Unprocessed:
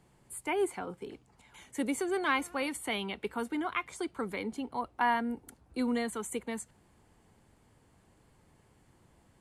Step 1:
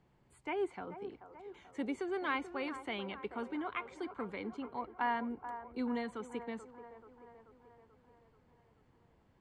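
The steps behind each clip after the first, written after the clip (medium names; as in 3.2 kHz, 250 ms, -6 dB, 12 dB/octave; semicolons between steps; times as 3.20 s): distance through air 150 m; on a send: feedback echo behind a band-pass 434 ms, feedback 58%, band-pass 720 Hz, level -9.5 dB; on the sum: trim -5 dB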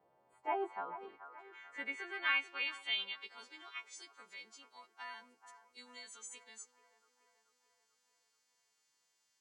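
partials quantised in pitch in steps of 2 st; band-pass sweep 600 Hz -> 6.2 kHz, 0.03–3.86 s; trim +8 dB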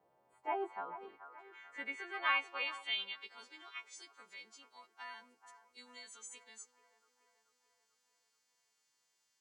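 time-frequency box 2.14–2.85 s, 420–1300 Hz +8 dB; trim -1 dB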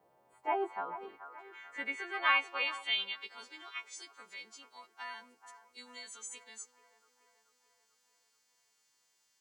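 treble shelf 9.4 kHz +3 dB; trim +4.5 dB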